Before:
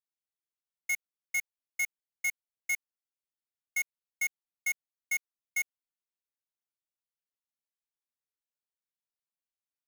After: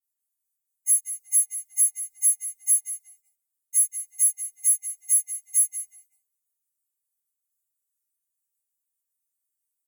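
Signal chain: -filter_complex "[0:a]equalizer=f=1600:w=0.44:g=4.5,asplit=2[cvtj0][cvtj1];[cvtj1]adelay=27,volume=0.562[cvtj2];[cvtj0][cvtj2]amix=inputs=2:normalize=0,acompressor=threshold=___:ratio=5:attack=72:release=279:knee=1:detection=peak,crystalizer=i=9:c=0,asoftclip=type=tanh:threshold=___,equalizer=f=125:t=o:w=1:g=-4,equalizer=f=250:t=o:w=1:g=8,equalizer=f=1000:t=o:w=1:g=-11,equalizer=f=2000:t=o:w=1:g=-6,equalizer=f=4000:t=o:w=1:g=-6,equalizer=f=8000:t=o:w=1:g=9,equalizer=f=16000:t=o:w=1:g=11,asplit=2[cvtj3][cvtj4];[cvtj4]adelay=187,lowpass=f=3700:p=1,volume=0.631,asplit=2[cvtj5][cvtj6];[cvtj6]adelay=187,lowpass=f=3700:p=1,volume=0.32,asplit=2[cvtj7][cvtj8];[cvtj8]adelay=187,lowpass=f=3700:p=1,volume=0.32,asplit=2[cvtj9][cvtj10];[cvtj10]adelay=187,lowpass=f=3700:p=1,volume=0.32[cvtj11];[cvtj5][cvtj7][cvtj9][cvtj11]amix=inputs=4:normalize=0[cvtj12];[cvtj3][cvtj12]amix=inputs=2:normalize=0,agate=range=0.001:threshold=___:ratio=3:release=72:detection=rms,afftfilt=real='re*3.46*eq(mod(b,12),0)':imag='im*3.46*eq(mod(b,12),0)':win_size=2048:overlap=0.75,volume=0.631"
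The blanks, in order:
0.00891, 0.237, 0.00178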